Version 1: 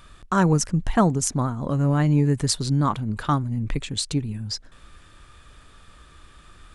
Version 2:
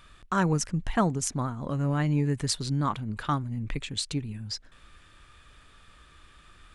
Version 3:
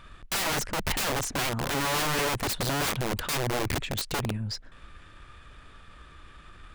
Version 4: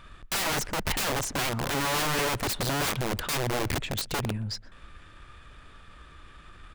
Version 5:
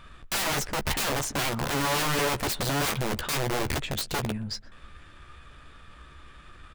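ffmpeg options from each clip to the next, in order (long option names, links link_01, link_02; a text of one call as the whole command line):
ffmpeg -i in.wav -af "equalizer=frequency=2400:width_type=o:width=1.7:gain=5,volume=-6.5dB" out.wav
ffmpeg -i in.wav -af "highshelf=frequency=3500:gain=-10,aeval=exprs='(mod(28.2*val(0)+1,2)-1)/28.2':channel_layout=same,aeval=exprs='0.0355*(cos(1*acos(clip(val(0)/0.0355,-1,1)))-cos(1*PI/2))+0.001*(cos(8*acos(clip(val(0)/0.0355,-1,1)))-cos(8*PI/2))':channel_layout=same,volume=6dB" out.wav
ffmpeg -i in.wav -filter_complex "[0:a]asplit=2[link_01][link_02];[link_02]adelay=123,lowpass=frequency=2100:poles=1,volume=-22.5dB,asplit=2[link_03][link_04];[link_04]adelay=123,lowpass=frequency=2100:poles=1,volume=0.24[link_05];[link_01][link_03][link_05]amix=inputs=3:normalize=0" out.wav
ffmpeg -i in.wav -filter_complex "[0:a]asplit=2[link_01][link_02];[link_02]adelay=14,volume=-8.5dB[link_03];[link_01][link_03]amix=inputs=2:normalize=0" out.wav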